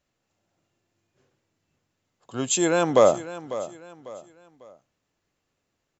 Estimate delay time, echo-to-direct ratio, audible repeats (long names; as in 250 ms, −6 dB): 548 ms, −14.0 dB, 3